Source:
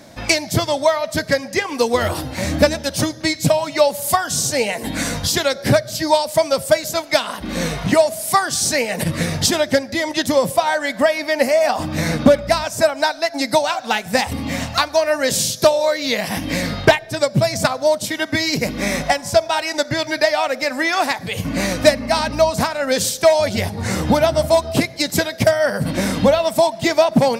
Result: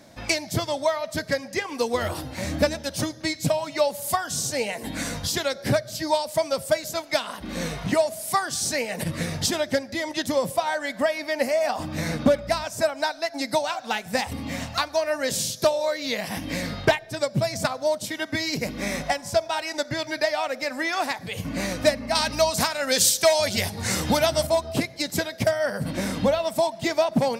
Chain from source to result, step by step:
0:22.15–0:24.47: high-shelf EQ 2,000 Hz +10.5 dB
level −7.5 dB

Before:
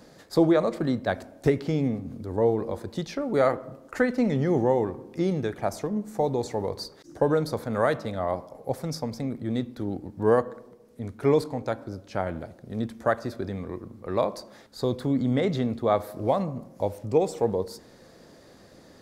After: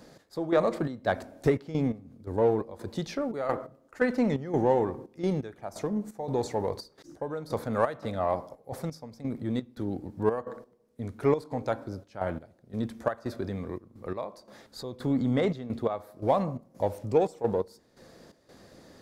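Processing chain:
dynamic equaliser 980 Hz, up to +4 dB, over −33 dBFS, Q 0.89
gate pattern "x..xx.xxx." 86 BPM −12 dB
in parallel at −7.5 dB: soft clipping −24 dBFS, distortion −7 dB
on the sum: level −4 dB

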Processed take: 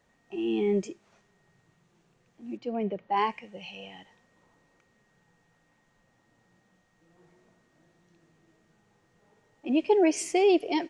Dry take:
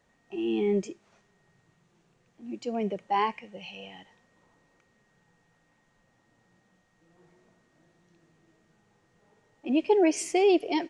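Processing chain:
0:02.57–0:03.17: high-frequency loss of the air 230 metres

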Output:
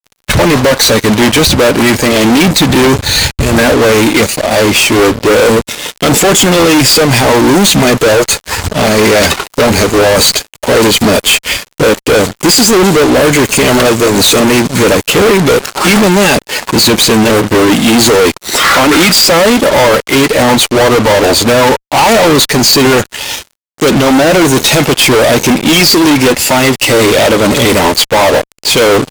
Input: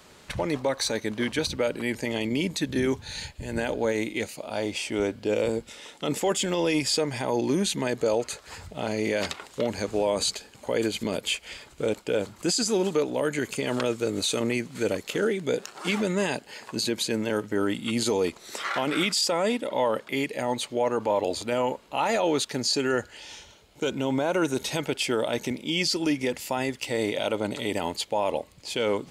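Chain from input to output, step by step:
spectral magnitudes quantised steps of 15 dB
fuzz pedal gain 44 dB, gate −44 dBFS
expander for the loud parts 1.5 to 1, over −37 dBFS
level +8.5 dB

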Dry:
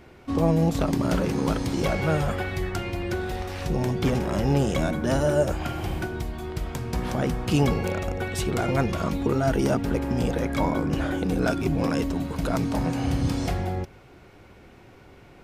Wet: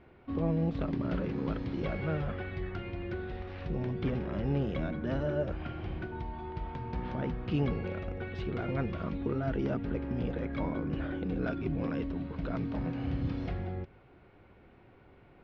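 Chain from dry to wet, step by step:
dynamic equaliser 840 Hz, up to −6 dB, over −42 dBFS, Q 1.6
0:06.11–0:07.30: steady tone 900 Hz −35 dBFS
Bessel low-pass filter 2,500 Hz, order 6
level −8 dB

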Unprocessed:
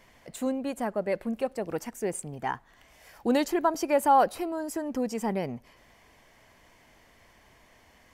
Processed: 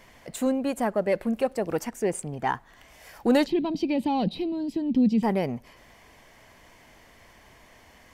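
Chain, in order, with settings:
0:01.85–0:02.48: high-shelf EQ 9,100 Hz −8.5 dB
in parallel at −10 dB: hard clipping −25.5 dBFS, distortion −6 dB
0:03.46–0:05.23: on the sum: drawn EQ curve 110 Hz 0 dB, 170 Hz +15 dB, 590 Hz −13 dB, 900 Hz −12 dB, 1,400 Hz −24 dB, 2,500 Hz −3 dB, 3,900 Hz +5 dB, 6,500 Hz −21 dB, 14,000 Hz −25 dB
level +2.5 dB

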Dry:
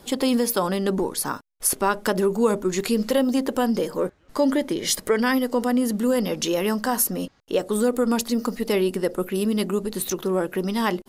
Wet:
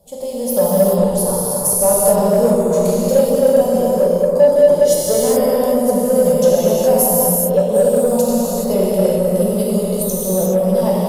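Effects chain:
drawn EQ curve 180 Hz 0 dB, 320 Hz −21 dB, 570 Hz +4 dB, 1,500 Hz −27 dB, 11,000 Hz −4 dB
automatic gain control gain up to 9.5 dB
reverb whose tail is shaped and stops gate 450 ms flat, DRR −6.5 dB
in parallel at −12 dB: hard clipping −9.5 dBFS, distortion −10 dB
on the sum: low-shelf EQ 350 Hz −4 dB
on a send: bucket-brigade delay 264 ms, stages 4,096, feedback 77%, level −10.5 dB
on the sum: boost into a limiter −2 dB
level −1 dB

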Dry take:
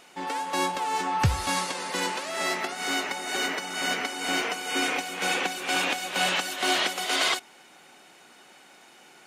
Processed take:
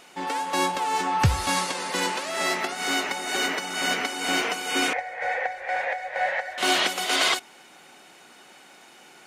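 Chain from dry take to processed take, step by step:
0:04.93–0:06.58: drawn EQ curve 110 Hz 0 dB, 190 Hz −27 dB, 340 Hz −27 dB, 520 Hz +3 dB, 770 Hz +1 dB, 1,200 Hz −15 dB, 1,900 Hz +6 dB, 2,800 Hz −20 dB, 4,700 Hz −19 dB, 13,000 Hz −30 dB
level +2.5 dB

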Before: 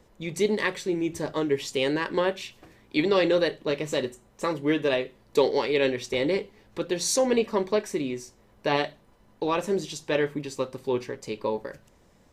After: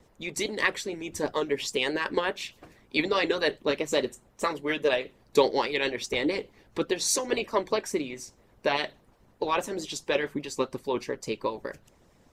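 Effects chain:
harmonic and percussive parts rebalanced harmonic −15 dB
pitch vibrato 4.8 Hz 41 cents
level +3.5 dB

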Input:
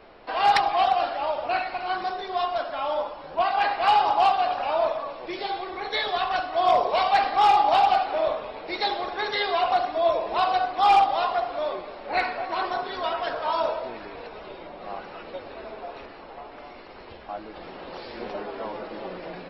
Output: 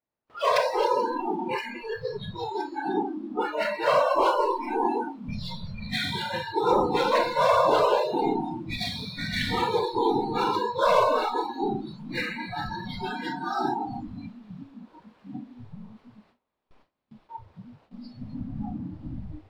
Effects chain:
ring modulation 240 Hz
low-shelf EQ 87 Hz −4.5 dB
tuned comb filter 290 Hz, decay 1.1 s, mix 50%
random phases in short frames
power curve on the samples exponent 0.7
delay with a high-pass on its return 1,020 ms, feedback 79%, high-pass 1,500 Hz, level −11 dB
four-comb reverb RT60 2.1 s, combs from 29 ms, DRR 2 dB
noise reduction from a noise print of the clip's start 28 dB
noise gate with hold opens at −53 dBFS
low-shelf EQ 350 Hz +6 dB
level +1 dB

